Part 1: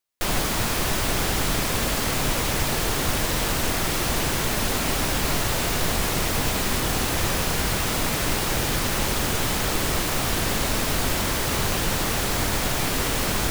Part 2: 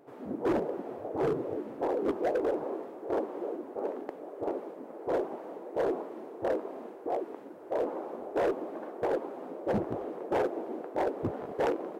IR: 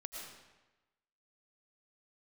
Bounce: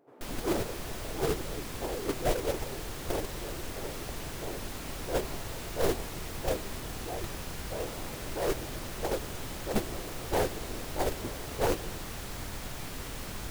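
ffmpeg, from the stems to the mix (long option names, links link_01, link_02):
-filter_complex "[0:a]lowshelf=frequency=150:gain=5,volume=-7dB[link_01];[1:a]volume=2.5dB[link_02];[link_01][link_02]amix=inputs=2:normalize=0,agate=range=-10dB:threshold=-22dB:ratio=16:detection=peak"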